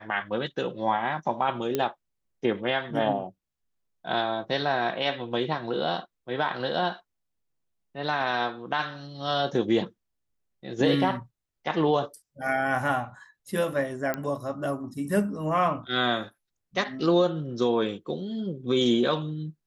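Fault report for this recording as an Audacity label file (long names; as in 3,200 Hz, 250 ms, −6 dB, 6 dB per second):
1.750000	1.750000	click −12 dBFS
14.140000	14.140000	click −14 dBFS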